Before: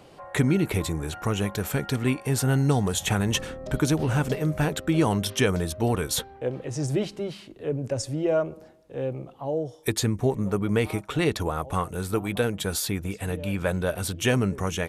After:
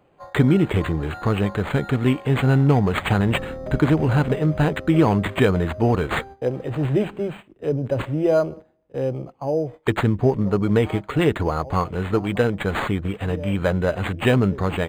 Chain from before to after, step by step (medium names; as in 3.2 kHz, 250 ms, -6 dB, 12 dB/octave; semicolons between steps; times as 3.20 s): gate -41 dBFS, range -14 dB; decimation joined by straight lines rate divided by 8×; trim +5.5 dB